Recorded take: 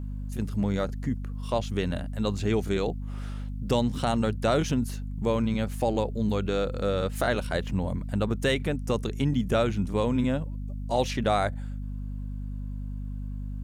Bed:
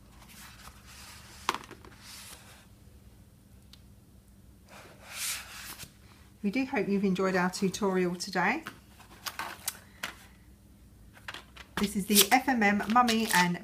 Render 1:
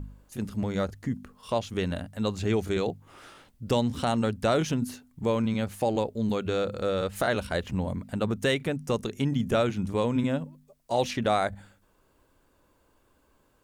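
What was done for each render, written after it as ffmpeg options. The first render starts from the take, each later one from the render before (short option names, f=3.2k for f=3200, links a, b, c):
-af "bandreject=f=50:t=h:w=4,bandreject=f=100:t=h:w=4,bandreject=f=150:t=h:w=4,bandreject=f=200:t=h:w=4,bandreject=f=250:t=h:w=4"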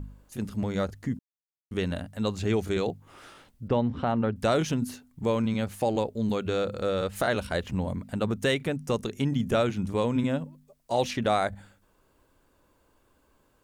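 -filter_complex "[0:a]asettb=1/sr,asplit=3[a][b][c];[a]atrim=end=3.684[d];[b]atrim=start=3.68:end=4.36,asetpts=PTS-STARTPTS,afade=t=in:d=0.004:c=qsin,afade=t=out:st=0.676:d=0.004:c=qsin,lowpass=1.9k[e];[c]atrim=start=4.356[f];[d][e]acrossfade=d=0.004:c1=hsin:c2=qsin[g];[g][f]acrossfade=d=0.004:c1=qsin:c2=hsin,asplit=3[h][i][j];[h]atrim=end=1.19,asetpts=PTS-STARTPTS,afade=t=out:st=1.186:d=0.004:c=hsin[k];[i]atrim=start=1.19:end=1.71,asetpts=PTS-STARTPTS,volume=0[l];[j]atrim=start=1.71,asetpts=PTS-STARTPTS,afade=t=in:d=0.004:c=hsin[m];[k][l][m]concat=n=3:v=0:a=1"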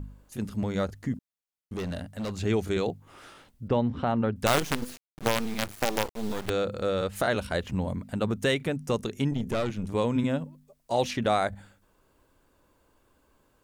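-filter_complex "[0:a]asettb=1/sr,asplit=3[a][b][c];[a]atrim=end=1.134[d];[b]atrim=start=1.13:end=2.34,asetpts=PTS-STARTPTS,afade=t=in:d=0.004:c=qsin,afade=t=out:st=1.206:d=0.004:c=qsin,volume=29.5dB,asoftclip=hard,volume=-29.5dB[e];[c]atrim=start=2.336[f];[d][e]acrossfade=d=0.004:c1=hsin:c2=qsin[g];[g][f]acrossfade=d=0.004:c1=qsin:c2=hsin,asettb=1/sr,asplit=3[h][i][j];[h]atrim=end=4.464[k];[i]atrim=start=4.46:end=6.5,asetpts=PTS-STARTPTS,afade=t=in:d=0.004:c=qsin,afade=t=out:st=2.036:d=0.004:c=qsin,acrusher=bits=4:dc=4:mix=0:aa=0.000001[l];[j]atrim=start=6.496[m];[k][l]acrossfade=d=0.004:c1=hsin:c2=qsin[n];[n][m]acrossfade=d=0.004:c1=qsin:c2=hsin,asettb=1/sr,asplit=3[o][p][q];[o]atrim=end=9.314[r];[p]atrim=start=9.31:end=9.92,asetpts=PTS-STARTPTS,afade=t=in:d=0.004:c=qsin,afade=t=out:st=0.606:d=0.004:c=qsin,aeval=exprs='(tanh(14.1*val(0)+0.55)-tanh(0.55))/14.1':c=same[s];[q]atrim=start=9.916[t];[r][s]acrossfade=d=0.004:c1=hsin:c2=qsin[u];[u][t]acrossfade=d=0.004:c1=qsin:c2=hsin"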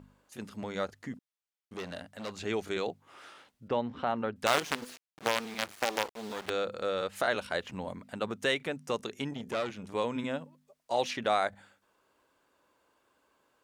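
-af "highpass=f=660:p=1,highshelf=f=8.5k:g=-10.5"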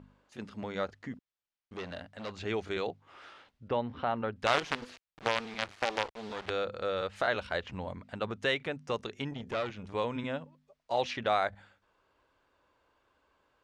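-af "lowpass=4.6k,asubboost=boost=3.5:cutoff=100"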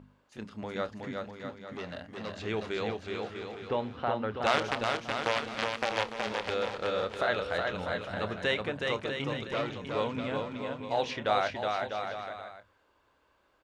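-filter_complex "[0:a]asplit=2[a][b];[b]adelay=28,volume=-13dB[c];[a][c]amix=inputs=2:normalize=0,aecho=1:1:370|647.5|855.6|1012|1129:0.631|0.398|0.251|0.158|0.1"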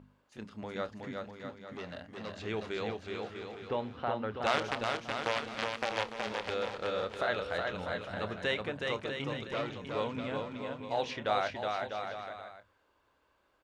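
-af "volume=-3dB"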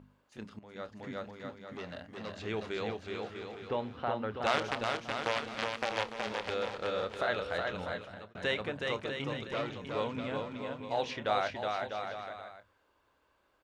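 -filter_complex "[0:a]asplit=3[a][b][c];[a]atrim=end=0.59,asetpts=PTS-STARTPTS,afade=t=out:st=0.586:d=0.004:c=hsin:silence=0.141254[d];[b]atrim=start=0.59:end=8.35,asetpts=PTS-STARTPTS,afade=t=in:d=0.55:silence=0.141254,afade=t=out:st=7.25:d=0.51[e];[c]atrim=start=8.35,asetpts=PTS-STARTPTS,afade=t=in:d=0.004:c=hsin[f];[d][e][f]concat=n=3:v=0:a=1"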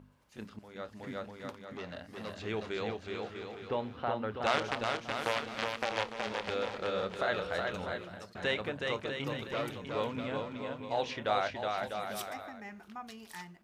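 -filter_complex "[1:a]volume=-21.5dB[a];[0:a][a]amix=inputs=2:normalize=0"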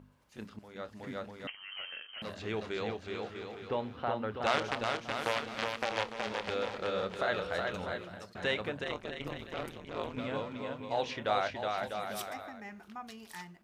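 -filter_complex "[0:a]asettb=1/sr,asplit=3[a][b][c];[a]atrim=end=1.474[d];[b]atrim=start=1.47:end=2.22,asetpts=PTS-STARTPTS,afade=t=in:d=0.004:c=qsin,afade=t=out:st=0.746:d=0.004:c=qsin,lowpass=f=2.8k:t=q:w=0.5098,lowpass=f=2.8k:t=q:w=0.6013,lowpass=f=2.8k:t=q:w=0.9,lowpass=f=2.8k:t=q:w=2.563,afreqshift=-3300[e];[c]atrim=start=2.216[f];[d][e]acrossfade=d=0.004:c1=hsin:c2=qsin[g];[g][f]acrossfade=d=0.004:c1=qsin:c2=hsin,asettb=1/sr,asplit=3[h][i][j];[h]atrim=end=8.844[k];[i]atrim=start=8.84:end=10.17,asetpts=PTS-STARTPTS,afade=t=in:d=0.004:c=qsin,afade=t=out:st=1.326:d=0.004:c=qsin,tremolo=f=160:d=0.947[l];[j]atrim=start=10.166[m];[k][l]acrossfade=d=0.004:c1=hsin:c2=qsin[n];[n][m]acrossfade=d=0.004:c1=qsin:c2=hsin"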